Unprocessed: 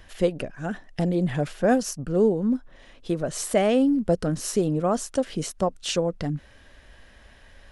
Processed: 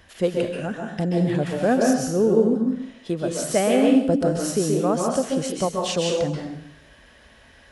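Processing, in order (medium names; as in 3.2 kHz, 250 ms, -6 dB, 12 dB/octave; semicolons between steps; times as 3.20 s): high-pass 60 Hz 12 dB/octave; plate-style reverb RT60 0.69 s, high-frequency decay 1×, pre-delay 120 ms, DRR 0 dB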